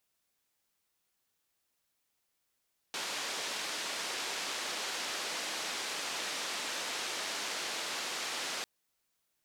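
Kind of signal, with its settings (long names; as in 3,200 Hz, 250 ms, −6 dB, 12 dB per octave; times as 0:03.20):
band-limited noise 310–5,500 Hz, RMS −37.5 dBFS 5.70 s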